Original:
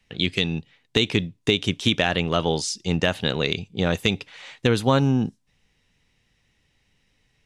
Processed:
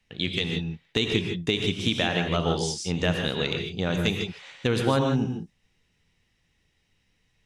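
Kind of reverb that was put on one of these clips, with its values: gated-style reverb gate 180 ms rising, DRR 3 dB; trim -5 dB

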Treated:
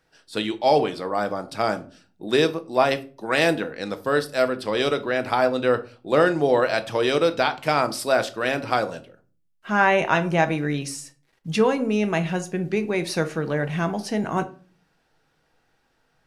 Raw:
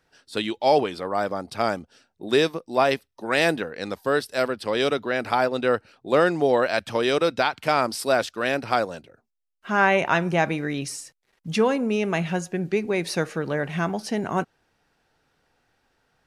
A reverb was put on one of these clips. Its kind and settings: simulated room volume 240 m³, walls furnished, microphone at 0.62 m

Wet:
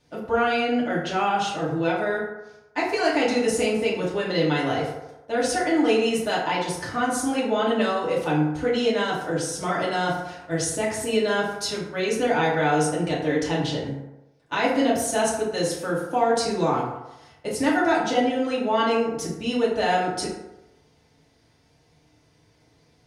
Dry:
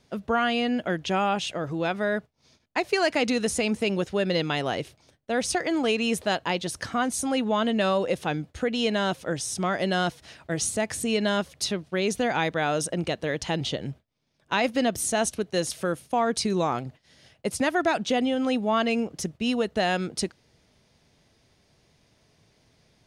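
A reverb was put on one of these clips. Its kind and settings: FDN reverb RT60 0.98 s, low-frequency decay 0.75×, high-frequency decay 0.45×, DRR -7 dB; trim -5.5 dB

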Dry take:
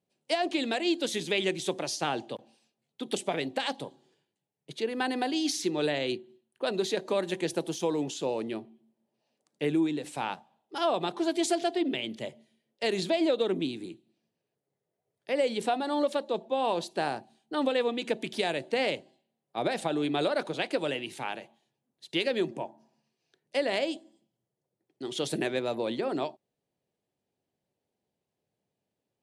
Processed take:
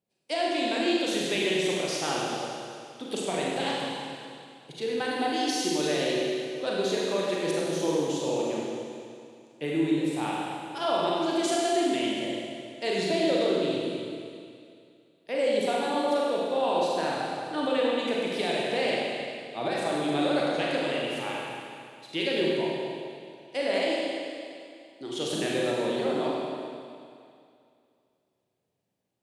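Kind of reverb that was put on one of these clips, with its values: Schroeder reverb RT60 2.4 s, combs from 33 ms, DRR -4.5 dB; trim -3 dB

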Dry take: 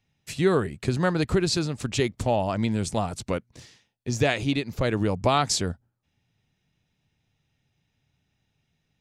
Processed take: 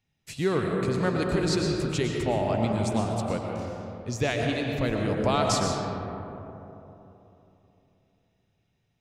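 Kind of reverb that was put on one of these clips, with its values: algorithmic reverb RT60 3.3 s, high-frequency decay 0.35×, pre-delay 75 ms, DRR 0 dB; trim -4.5 dB

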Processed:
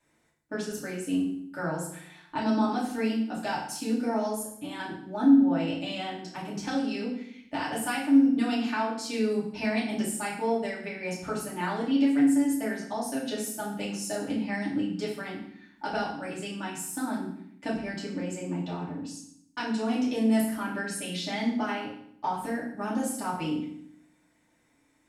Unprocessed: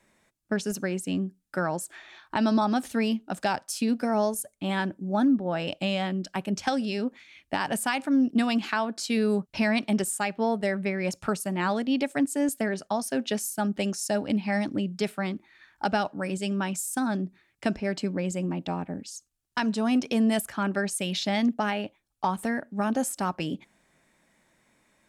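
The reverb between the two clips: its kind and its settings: FDN reverb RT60 0.67 s, low-frequency decay 1.45×, high-frequency decay 0.9×, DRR -7 dB; trim -11 dB

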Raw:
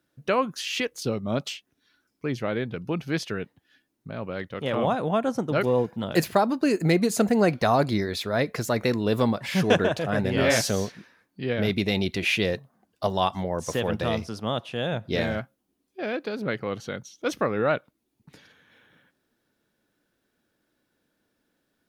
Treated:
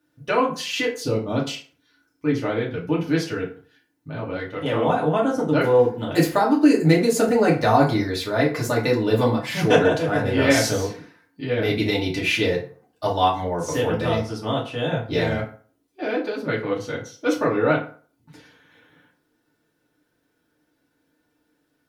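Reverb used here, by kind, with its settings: FDN reverb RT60 0.43 s, low-frequency decay 0.9×, high-frequency decay 0.65×, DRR -5 dB; trim -2.5 dB

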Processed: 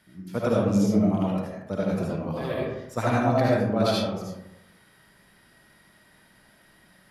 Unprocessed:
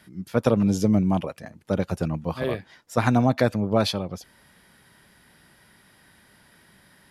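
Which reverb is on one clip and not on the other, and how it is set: algorithmic reverb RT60 0.91 s, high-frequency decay 0.45×, pre-delay 35 ms, DRR -5.5 dB; trim -7.5 dB

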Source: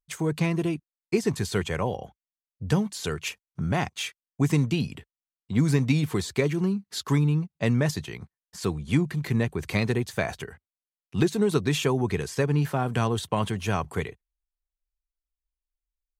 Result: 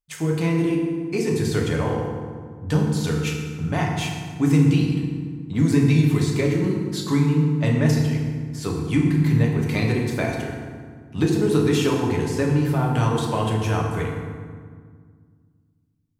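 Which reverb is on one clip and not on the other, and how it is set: FDN reverb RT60 1.8 s, low-frequency decay 1.5×, high-frequency decay 0.6×, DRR -1.5 dB; trim -1 dB

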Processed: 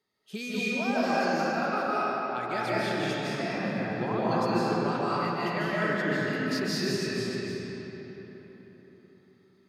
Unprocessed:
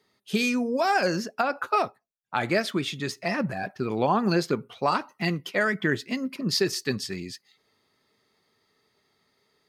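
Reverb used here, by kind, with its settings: algorithmic reverb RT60 4.3 s, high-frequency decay 0.6×, pre-delay 115 ms, DRR -9.5 dB; trim -12 dB

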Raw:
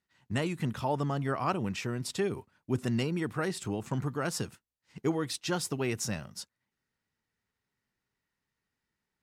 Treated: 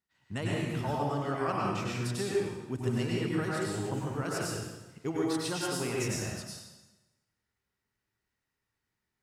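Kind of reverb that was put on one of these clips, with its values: plate-style reverb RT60 1.1 s, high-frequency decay 0.9×, pre-delay 85 ms, DRR -4.5 dB; trim -5.5 dB

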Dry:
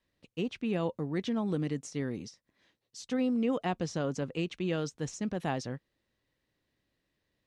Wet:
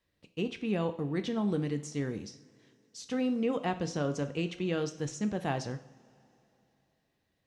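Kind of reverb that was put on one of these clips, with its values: two-slope reverb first 0.52 s, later 3.3 s, from -21 dB, DRR 8 dB

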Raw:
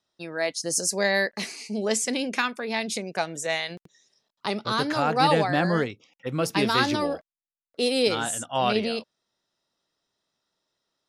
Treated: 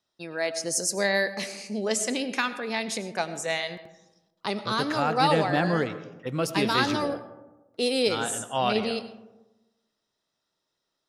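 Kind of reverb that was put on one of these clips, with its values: algorithmic reverb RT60 1.1 s, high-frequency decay 0.35×, pre-delay 55 ms, DRR 12.5 dB; trim -1.5 dB

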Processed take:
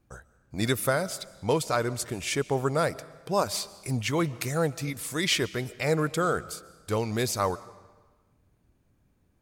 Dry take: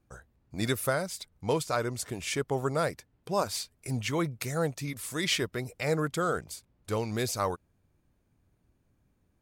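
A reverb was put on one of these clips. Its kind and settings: algorithmic reverb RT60 1.3 s, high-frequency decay 0.9×, pre-delay 95 ms, DRR 19 dB; trim +3 dB

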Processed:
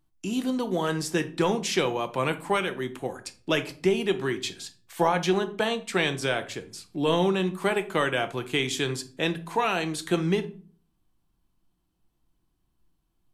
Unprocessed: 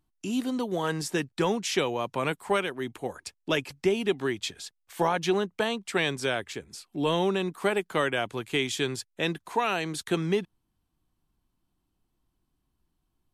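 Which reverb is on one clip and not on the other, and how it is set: simulated room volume 360 m³, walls furnished, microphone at 0.73 m; trim +1 dB

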